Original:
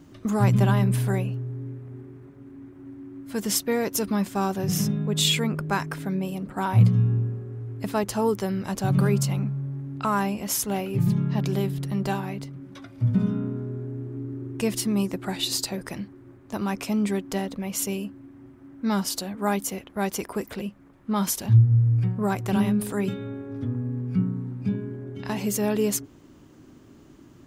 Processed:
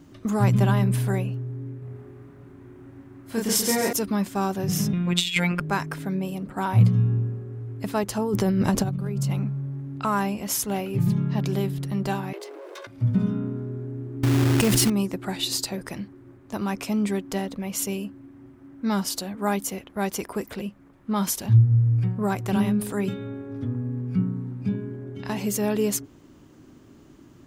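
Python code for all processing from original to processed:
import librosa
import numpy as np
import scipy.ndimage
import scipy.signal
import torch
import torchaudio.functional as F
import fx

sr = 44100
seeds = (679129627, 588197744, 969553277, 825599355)

y = fx.chain(x, sr, fx.doubler(ms=31.0, db=-2.0),
    fx.echo_thinned(ms=135, feedback_pct=45, hz=170.0, wet_db=-4.0), at=(1.79, 3.93))
y = fx.chain(y, sr, fx.robotise(hz=176.0),
    fx.peak_eq(hz=2400.0, db=13.5, octaves=1.4),
    fx.over_compress(threshold_db=-21.0, ratio=-0.5), at=(4.93, 5.6))
y = fx.chain(y, sr, fx.low_shelf(hz=480.0, db=7.5),
    fx.over_compress(threshold_db=-24.0, ratio=-1.0), at=(8.18, 9.31))
y = fx.chain(y, sr, fx.lower_of_two(delay_ms=1.9),
    fx.steep_highpass(hz=310.0, slope=96),
    fx.env_flatten(amount_pct=70), at=(12.33, 12.87))
y = fx.chain(y, sr, fx.peak_eq(hz=62.0, db=6.5, octaves=2.8),
    fx.quant_companded(bits=4),
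    fx.env_flatten(amount_pct=100), at=(14.23, 14.9))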